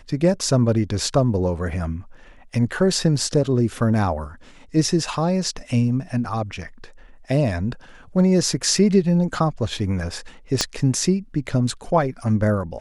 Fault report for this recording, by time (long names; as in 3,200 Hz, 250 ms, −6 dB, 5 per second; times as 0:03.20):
0:10.61: click −4 dBFS